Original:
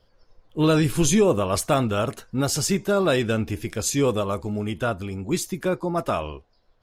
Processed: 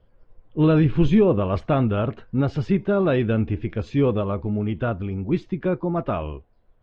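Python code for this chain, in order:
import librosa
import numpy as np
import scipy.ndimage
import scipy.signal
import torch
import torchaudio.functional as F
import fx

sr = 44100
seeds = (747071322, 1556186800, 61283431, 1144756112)

y = scipy.signal.sosfilt(scipy.signal.butter(4, 3100.0, 'lowpass', fs=sr, output='sos'), x)
y = fx.low_shelf(y, sr, hz=440.0, db=9.0)
y = y * librosa.db_to_amplitude(-4.0)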